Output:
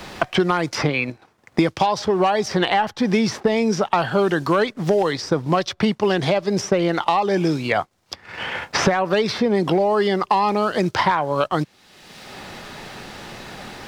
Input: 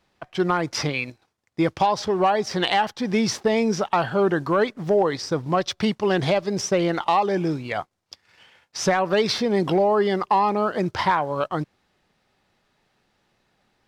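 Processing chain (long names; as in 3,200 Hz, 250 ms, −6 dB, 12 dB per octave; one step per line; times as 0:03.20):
multiband upward and downward compressor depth 100%
level +1.5 dB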